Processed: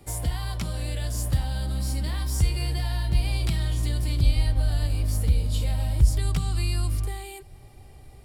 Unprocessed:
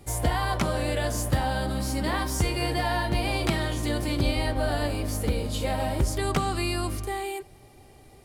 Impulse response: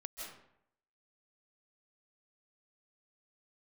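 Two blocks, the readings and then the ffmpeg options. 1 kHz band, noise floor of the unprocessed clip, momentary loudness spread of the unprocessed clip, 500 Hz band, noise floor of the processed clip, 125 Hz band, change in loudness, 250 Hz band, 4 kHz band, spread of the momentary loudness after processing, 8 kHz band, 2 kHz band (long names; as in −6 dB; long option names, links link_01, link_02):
−12.0 dB, −52 dBFS, 3 LU, −11.5 dB, −47 dBFS, +4.5 dB, +1.0 dB, −7.0 dB, −3.0 dB, 8 LU, −1.5 dB, −8.5 dB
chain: -filter_complex "[0:a]bandreject=frequency=6300:width=12,asubboost=boost=3:cutoff=140,acrossover=split=190|2900[link_01][link_02][link_03];[link_02]acompressor=threshold=-39dB:ratio=6[link_04];[link_01][link_04][link_03]amix=inputs=3:normalize=0,volume=-1dB"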